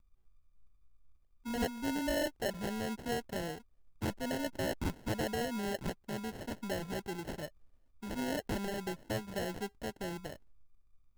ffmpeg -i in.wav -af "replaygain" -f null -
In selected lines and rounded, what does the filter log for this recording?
track_gain = +18.5 dB
track_peak = 0.053